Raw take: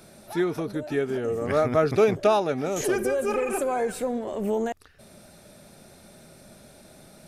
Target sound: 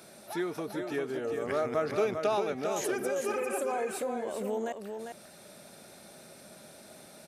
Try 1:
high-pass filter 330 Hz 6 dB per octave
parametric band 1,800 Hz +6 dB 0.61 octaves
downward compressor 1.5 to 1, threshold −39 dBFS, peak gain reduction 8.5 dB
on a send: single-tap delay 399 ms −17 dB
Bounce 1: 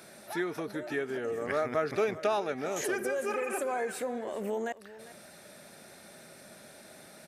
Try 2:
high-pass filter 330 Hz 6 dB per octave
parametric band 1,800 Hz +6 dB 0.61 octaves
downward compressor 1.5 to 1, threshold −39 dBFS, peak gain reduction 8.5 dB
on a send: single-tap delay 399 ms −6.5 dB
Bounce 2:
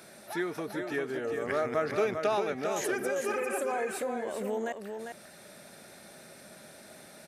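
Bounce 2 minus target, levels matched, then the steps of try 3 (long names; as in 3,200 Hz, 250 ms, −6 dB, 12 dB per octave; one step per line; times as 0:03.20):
2,000 Hz band +3.5 dB
high-pass filter 330 Hz 6 dB per octave
downward compressor 1.5 to 1, threshold −39 dBFS, peak gain reduction 8 dB
on a send: single-tap delay 399 ms −6.5 dB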